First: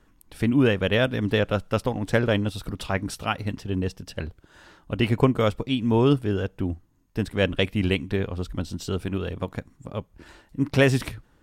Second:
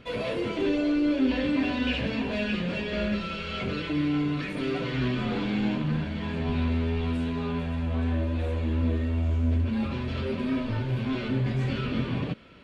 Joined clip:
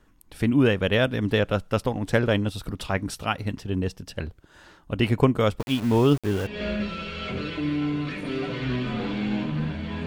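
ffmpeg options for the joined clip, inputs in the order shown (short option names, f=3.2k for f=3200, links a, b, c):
-filter_complex "[0:a]asplit=3[a][b][c];[a]afade=t=out:st=5.58:d=0.02[d];[b]aeval=exprs='val(0)*gte(abs(val(0)),0.0266)':c=same,afade=t=in:st=5.58:d=0.02,afade=t=out:st=6.59:d=0.02[e];[c]afade=t=in:st=6.59:d=0.02[f];[d][e][f]amix=inputs=3:normalize=0,apad=whole_dur=10.06,atrim=end=10.06,atrim=end=6.59,asetpts=PTS-STARTPTS[g];[1:a]atrim=start=2.73:end=6.38,asetpts=PTS-STARTPTS[h];[g][h]acrossfade=d=0.18:c1=tri:c2=tri"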